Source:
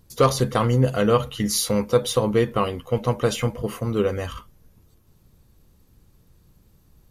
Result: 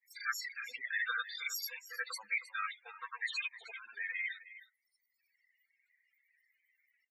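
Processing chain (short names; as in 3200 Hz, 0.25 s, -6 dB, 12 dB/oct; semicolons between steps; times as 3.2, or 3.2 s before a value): grains, grains 20/s, spray 65 ms, pitch spread up and down by 0 st; in parallel at +1 dB: compressor, threshold -37 dBFS, peak gain reduction 22 dB; on the sum: resonant high-pass 1700 Hz, resonance Q 6.5; formant shift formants +3 st; reverb removal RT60 1.5 s; soft clip -17.5 dBFS, distortion -13 dB; loudest bins only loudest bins 16; on a send: echo 0.313 s -15.5 dB; on the sum: gain -8 dB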